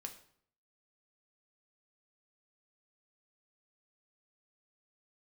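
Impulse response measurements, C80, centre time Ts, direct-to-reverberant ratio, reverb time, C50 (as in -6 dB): 15.0 dB, 11 ms, 4.5 dB, 0.60 s, 11.5 dB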